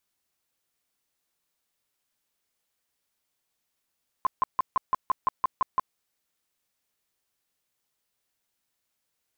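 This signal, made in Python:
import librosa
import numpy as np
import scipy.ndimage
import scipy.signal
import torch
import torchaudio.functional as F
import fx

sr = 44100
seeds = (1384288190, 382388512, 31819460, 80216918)

y = fx.tone_burst(sr, hz=1040.0, cycles=17, every_s=0.17, bursts=10, level_db=-18.5)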